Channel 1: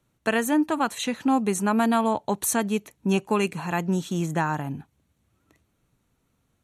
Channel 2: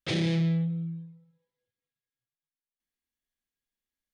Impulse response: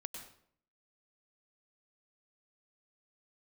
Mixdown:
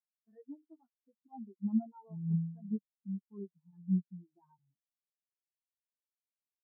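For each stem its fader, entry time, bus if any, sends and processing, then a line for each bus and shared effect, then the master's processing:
-6.0 dB, 0.00 s, no send, low-pass 2.1 kHz 24 dB/octave; peak limiter -16.5 dBFS, peak gain reduction 5 dB
-8.5 dB, 1.90 s, send -10.5 dB, attacks held to a fixed rise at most 430 dB/s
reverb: on, RT60 0.60 s, pre-delay 93 ms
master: flange 0.67 Hz, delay 8.2 ms, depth 4.3 ms, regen -6%; spectral contrast expander 4:1

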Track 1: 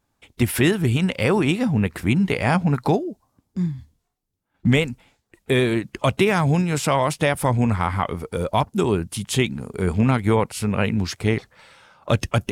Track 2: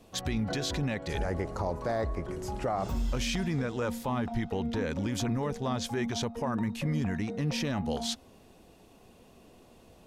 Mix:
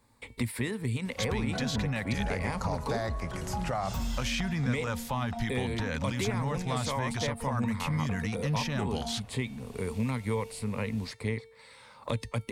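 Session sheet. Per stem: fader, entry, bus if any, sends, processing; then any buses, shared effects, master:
-10.0 dB, 0.00 s, no send, rippled EQ curve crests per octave 0.96, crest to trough 9 dB; feedback comb 450 Hz, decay 0.63 s, mix 50%
+2.0 dB, 1.05 s, no send, peaking EQ 360 Hz -13.5 dB 1.1 oct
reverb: none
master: three bands compressed up and down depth 70%

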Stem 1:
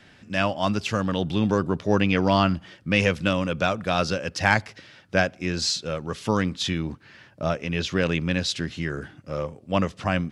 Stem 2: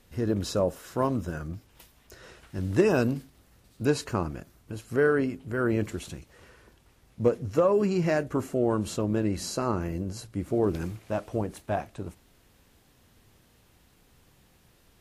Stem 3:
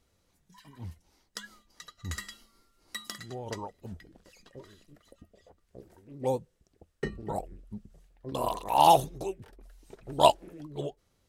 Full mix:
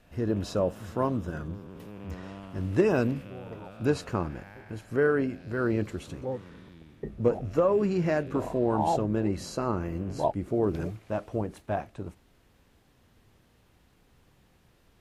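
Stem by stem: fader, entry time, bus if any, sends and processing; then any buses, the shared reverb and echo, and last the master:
-19.0 dB, 0.00 s, no send, spectral blur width 499 ms; low-pass 3.8 kHz
-1.0 dB, 0.00 s, no send, none
-2.5 dB, 0.00 s, no send, boxcar filter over 31 samples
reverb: none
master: treble shelf 4.5 kHz -8.5 dB

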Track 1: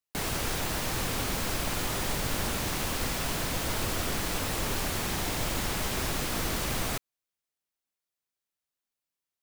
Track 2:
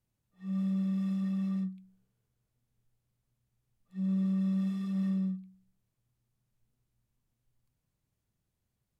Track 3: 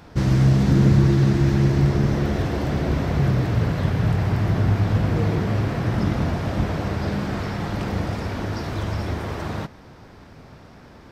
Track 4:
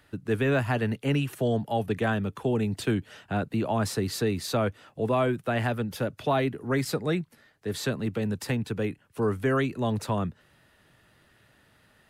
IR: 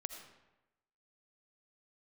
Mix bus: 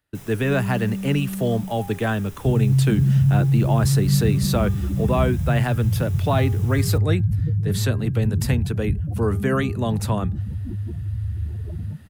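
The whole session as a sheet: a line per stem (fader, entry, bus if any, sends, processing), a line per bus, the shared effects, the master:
-12.5 dB, 0.00 s, no send, band-stop 4.4 kHz, Q 6.2; auto duck -6 dB, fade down 0.30 s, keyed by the fourth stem
+1.0 dB, 0.00 s, no send, none
-3.0 dB, 2.30 s, no send, spectral contrast enhancement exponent 3.8
+2.5 dB, 0.00 s, no send, de-hum 403.2 Hz, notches 4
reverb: none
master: treble shelf 7.4 kHz +8.5 dB; gate -45 dBFS, range -22 dB; bass shelf 100 Hz +6.5 dB

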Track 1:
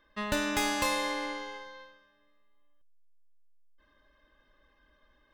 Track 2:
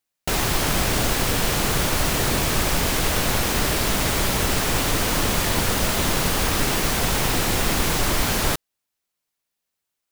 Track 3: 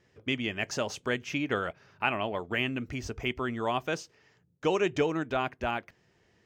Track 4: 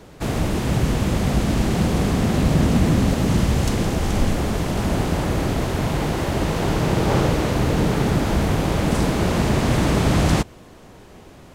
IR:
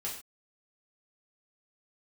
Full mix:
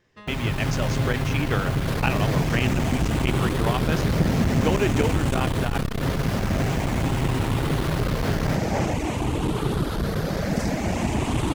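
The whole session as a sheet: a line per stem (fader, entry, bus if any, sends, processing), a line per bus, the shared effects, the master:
-8.0 dB, 0.00 s, no send, compression, threshold -33 dBFS, peak gain reduction 8.5 dB
-12.0 dB, 0.00 s, no send, high-pass 47 Hz 12 dB/octave; tone controls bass +12 dB, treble -12 dB; comb 7.5 ms, depth 65%
-0.5 dB, 0.00 s, no send, none
-7.5 dB, 1.65 s, no send, drifting ripple filter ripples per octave 0.63, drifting +0.49 Hz, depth 7 dB; reverb removal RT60 0.66 s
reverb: none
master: level rider gain up to 4.5 dB; transformer saturation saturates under 230 Hz

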